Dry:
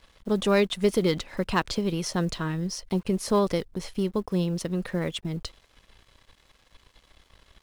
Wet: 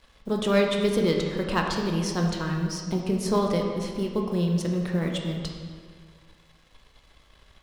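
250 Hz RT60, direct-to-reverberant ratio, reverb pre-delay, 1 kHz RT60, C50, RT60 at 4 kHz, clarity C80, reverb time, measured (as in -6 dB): 1.9 s, 1.0 dB, 11 ms, 1.8 s, 3.0 dB, 1.3 s, 4.5 dB, 1.8 s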